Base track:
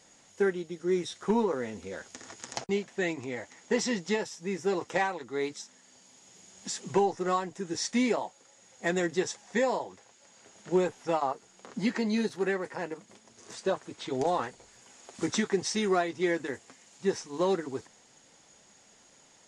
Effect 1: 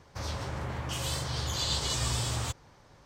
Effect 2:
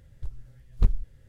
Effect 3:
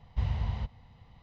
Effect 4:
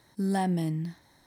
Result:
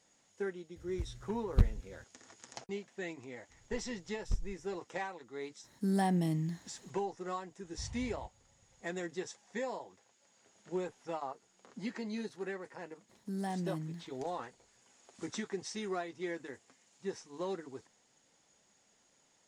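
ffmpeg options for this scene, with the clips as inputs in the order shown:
ffmpeg -i bed.wav -i cue0.wav -i cue1.wav -i cue2.wav -i cue3.wav -filter_complex "[2:a]asplit=2[link_01][link_02];[4:a]asplit=2[link_03][link_04];[0:a]volume=-11dB[link_05];[link_01]highpass=49,atrim=end=1.28,asetpts=PTS-STARTPTS,afade=type=in:duration=0.004:curve=hsin,afade=type=out:start_time=1.276:duration=0.004:curve=hsin,adelay=760[link_06];[link_02]atrim=end=1.28,asetpts=PTS-STARTPTS,volume=-13.5dB,afade=type=in:duration=0.004:curve=hsin,afade=type=out:start_time=1.276:duration=0.004:curve=hsin,adelay=153909S[link_07];[link_03]atrim=end=1.26,asetpts=PTS-STARTPTS,volume=-3dB,afade=type=in:duration=0.004:curve=hsin,afade=type=out:start_time=1.256:duration=0.004:curve=hsin,adelay=5640[link_08];[3:a]atrim=end=1.22,asetpts=PTS-STARTPTS,volume=-16dB,afade=type=in:duration=0.004:curve=hsin,afade=type=out:start_time=1.216:duration=0.004:curve=hsin,adelay=7610[link_09];[link_04]atrim=end=1.26,asetpts=PTS-STARTPTS,volume=-10dB,afade=type=in:duration=0.004:curve=hsin,afade=type=out:start_time=1.256:duration=0.004:curve=hsin,adelay=13090[link_10];[link_05][link_06][link_07][link_08][link_09][link_10]amix=inputs=6:normalize=0" out.wav

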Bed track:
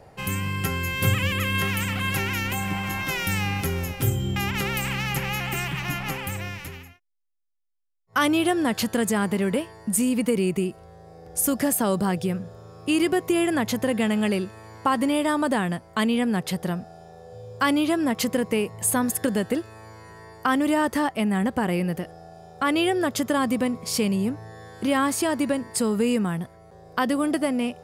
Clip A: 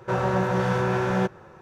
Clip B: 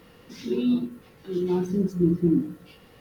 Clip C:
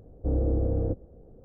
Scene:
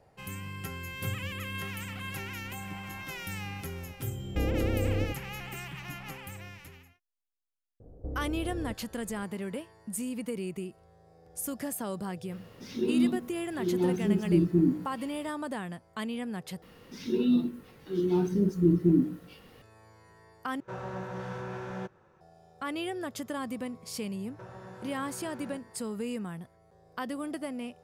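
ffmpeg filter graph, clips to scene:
ffmpeg -i bed.wav -i cue0.wav -i cue1.wav -i cue2.wav -filter_complex "[3:a]asplit=2[link_01][link_02];[2:a]asplit=2[link_03][link_04];[1:a]asplit=2[link_05][link_06];[0:a]volume=-12.5dB[link_07];[link_01]aecho=1:1:83:0.596[link_08];[link_02]acompressor=threshold=-34dB:ratio=4:attack=11:release=738:knee=1:detection=peak[link_09];[link_06]acrossover=split=180|810|2700[link_10][link_11][link_12][link_13];[link_10]acompressor=threshold=-38dB:ratio=3[link_14];[link_11]acompressor=threshold=-34dB:ratio=3[link_15];[link_12]acompressor=threshold=-40dB:ratio=3[link_16];[link_13]acompressor=threshold=-57dB:ratio=3[link_17];[link_14][link_15][link_16][link_17]amix=inputs=4:normalize=0[link_18];[link_07]asplit=3[link_19][link_20][link_21];[link_19]atrim=end=16.624[link_22];[link_04]atrim=end=3,asetpts=PTS-STARTPTS,volume=-1.5dB[link_23];[link_20]atrim=start=19.616:end=20.604[link_24];[link_05]atrim=end=1.61,asetpts=PTS-STARTPTS,volume=-14.5dB[link_25];[link_21]atrim=start=22.206[link_26];[link_08]atrim=end=1.44,asetpts=PTS-STARTPTS,volume=-2dB,afade=type=in:duration=0.004:curve=hsin,afade=type=out:start_time=1.436:duration=0.004:curve=hsin,adelay=4110[link_27];[link_09]atrim=end=1.44,asetpts=PTS-STARTPTS,volume=-1dB,afade=type=in:duration=0.004:curve=hsin,afade=type=out:start_time=1.436:duration=0.004:curve=hsin,adelay=7800[link_28];[link_03]atrim=end=3,asetpts=PTS-STARTPTS,volume=-2.5dB,afade=type=in:duration=0.004:curve=hsin,afade=type=out:start_time=2.996:duration=0.004:curve=hsin,adelay=12310[link_29];[link_18]atrim=end=1.61,asetpts=PTS-STARTPTS,volume=-16dB,afade=type=in:duration=0.004:curve=hsin,afade=type=out:start_time=1.606:duration=0.004:curve=hsin,adelay=24310[link_30];[link_22][link_23]acrossfade=duration=0.004:curve1=hsin:curve2=hsin[link_31];[link_31][link_24]acrossfade=duration=0.004:curve1=hsin:curve2=hsin[link_32];[link_32][link_25]acrossfade=duration=0.004:curve1=hsin:curve2=hsin[link_33];[link_33][link_26]acrossfade=duration=0.004:curve1=hsin:curve2=hsin[link_34];[link_34][link_27][link_28][link_29][link_30]amix=inputs=5:normalize=0" out.wav

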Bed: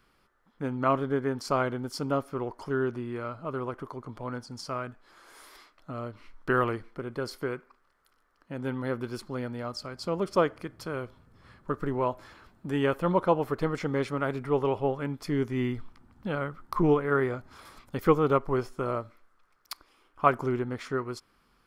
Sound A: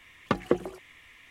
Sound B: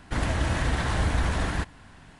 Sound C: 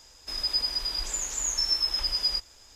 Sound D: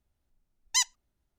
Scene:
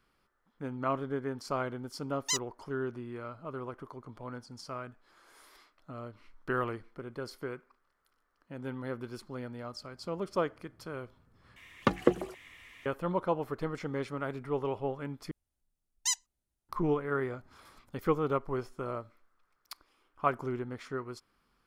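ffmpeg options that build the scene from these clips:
ffmpeg -i bed.wav -i cue0.wav -i cue1.wav -i cue2.wav -i cue3.wav -filter_complex "[4:a]asplit=2[link_01][link_02];[0:a]volume=-6.5dB[link_03];[link_01]aeval=exprs='val(0)*gte(abs(val(0)),0.0075)':channel_layout=same[link_04];[link_02]equalizer=frequency=9700:width_type=o:width=1.1:gain=9.5[link_05];[link_03]asplit=3[link_06][link_07][link_08];[link_06]atrim=end=11.564[link_09];[1:a]atrim=end=1.3[link_10];[link_07]atrim=start=12.856:end=15.314[link_11];[link_05]atrim=end=1.38,asetpts=PTS-STARTPTS,volume=-9dB[link_12];[link_08]atrim=start=16.686[link_13];[link_04]atrim=end=1.38,asetpts=PTS-STARTPTS,volume=-6dB,afade=type=in:duration=0.004:curve=hsin,afade=type=out:start_time=1.376:duration=0.004:curve=hsin,adelay=1540[link_14];[link_09][link_10]acrossfade=duration=0.004:curve1=hsin:curve2=hsin[link_15];[link_15][link_11]acrossfade=duration=0.004:curve1=hsin:curve2=hsin[link_16];[link_16][link_12]acrossfade=duration=0.004:curve1=hsin:curve2=hsin[link_17];[link_17][link_13]acrossfade=duration=0.004:curve1=hsin:curve2=hsin[link_18];[link_18][link_14]amix=inputs=2:normalize=0" out.wav

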